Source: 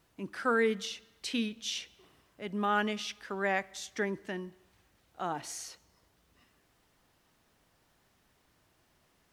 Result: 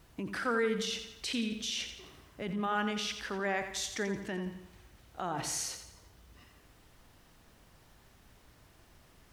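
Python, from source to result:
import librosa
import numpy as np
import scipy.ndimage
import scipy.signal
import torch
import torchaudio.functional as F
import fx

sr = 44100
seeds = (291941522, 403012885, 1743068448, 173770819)

p1 = fx.low_shelf(x, sr, hz=92.0, db=11.5)
p2 = fx.over_compress(p1, sr, threshold_db=-42.0, ratio=-1.0)
p3 = p1 + (p2 * 10.0 ** (0.5 / 20.0))
p4 = fx.echo_feedback(p3, sr, ms=86, feedback_pct=45, wet_db=-9.0)
y = p4 * 10.0 ** (-4.5 / 20.0)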